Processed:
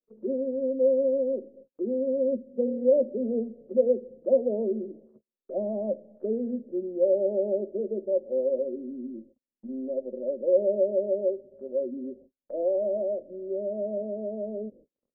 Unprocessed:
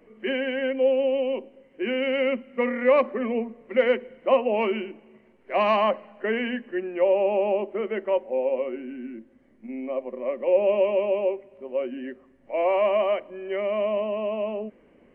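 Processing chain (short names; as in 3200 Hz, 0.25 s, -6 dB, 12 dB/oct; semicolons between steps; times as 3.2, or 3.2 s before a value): elliptic low-pass 570 Hz, stop band 50 dB; gate -51 dBFS, range -41 dB; mismatched tape noise reduction encoder only; gain -1 dB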